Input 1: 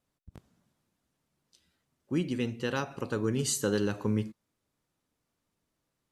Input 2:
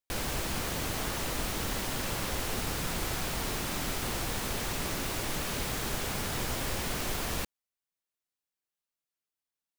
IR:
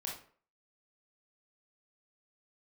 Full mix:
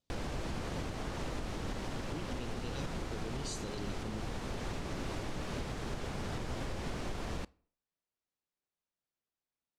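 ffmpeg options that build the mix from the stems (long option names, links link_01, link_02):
-filter_complex "[0:a]highshelf=frequency=2500:width_type=q:width=1.5:gain=13,volume=-10.5dB[link_01];[1:a]volume=-1dB,asplit=2[link_02][link_03];[link_03]volume=-23dB[link_04];[2:a]atrim=start_sample=2205[link_05];[link_04][link_05]afir=irnorm=-1:irlink=0[link_06];[link_01][link_02][link_06]amix=inputs=3:normalize=0,lowpass=6700,tiltshelf=frequency=1100:gain=4.5,alimiter=level_in=4.5dB:limit=-24dB:level=0:latency=1:release=470,volume=-4.5dB"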